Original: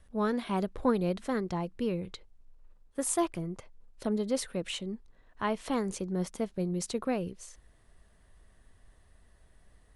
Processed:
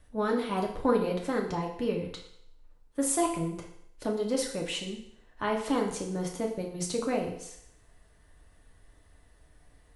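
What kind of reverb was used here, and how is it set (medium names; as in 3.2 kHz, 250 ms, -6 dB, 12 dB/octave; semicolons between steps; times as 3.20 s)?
FDN reverb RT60 0.71 s, low-frequency decay 0.75×, high-frequency decay 1×, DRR 0 dB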